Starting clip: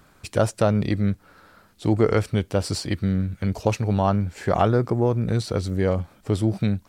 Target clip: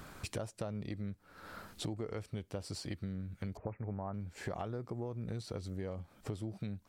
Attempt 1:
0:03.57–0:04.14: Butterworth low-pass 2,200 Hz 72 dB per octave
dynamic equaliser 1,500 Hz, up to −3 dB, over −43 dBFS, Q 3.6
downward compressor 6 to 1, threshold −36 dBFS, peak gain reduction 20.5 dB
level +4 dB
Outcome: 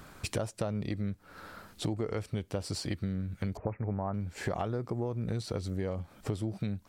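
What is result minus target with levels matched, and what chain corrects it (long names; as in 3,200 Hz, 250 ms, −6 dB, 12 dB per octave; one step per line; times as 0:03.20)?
downward compressor: peak gain reduction −6.5 dB
0:03.57–0:04.14: Butterworth low-pass 2,200 Hz 72 dB per octave
dynamic equaliser 1,500 Hz, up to −3 dB, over −43 dBFS, Q 3.6
downward compressor 6 to 1, threshold −44 dBFS, peak gain reduction 27.5 dB
level +4 dB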